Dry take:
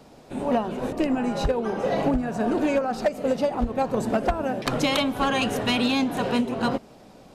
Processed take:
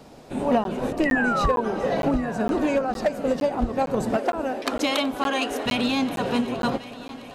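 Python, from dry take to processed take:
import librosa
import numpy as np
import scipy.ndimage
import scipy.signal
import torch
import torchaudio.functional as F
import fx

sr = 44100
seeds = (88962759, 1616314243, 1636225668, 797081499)

p1 = fx.rider(x, sr, range_db=4, speed_s=2.0)
p2 = fx.spec_paint(p1, sr, seeds[0], shape='fall', start_s=1.05, length_s=0.56, low_hz=940.0, high_hz=2000.0, level_db=-25.0)
p3 = fx.brickwall_highpass(p2, sr, low_hz=230.0, at=(4.16, 5.66))
p4 = p3 + fx.echo_heads(p3, sr, ms=376, heads='all three', feedback_pct=54, wet_db=-21, dry=0)
y = fx.buffer_crackle(p4, sr, first_s=0.64, period_s=0.46, block=512, kind='zero')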